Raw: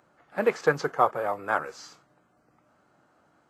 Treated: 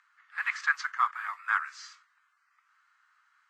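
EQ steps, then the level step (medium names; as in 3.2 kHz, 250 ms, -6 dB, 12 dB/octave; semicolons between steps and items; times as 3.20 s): steep high-pass 1.1 kHz 48 dB/octave; low-pass 6.9 kHz 12 dB/octave; peaking EQ 1.9 kHz +6.5 dB 0.45 oct; 0.0 dB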